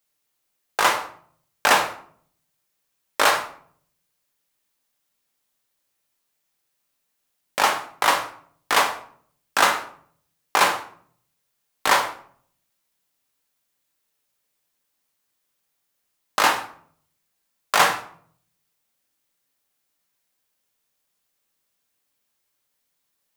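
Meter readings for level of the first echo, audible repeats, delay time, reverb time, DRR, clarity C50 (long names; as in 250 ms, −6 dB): no echo audible, no echo audible, no echo audible, 0.55 s, 3.5 dB, 10.0 dB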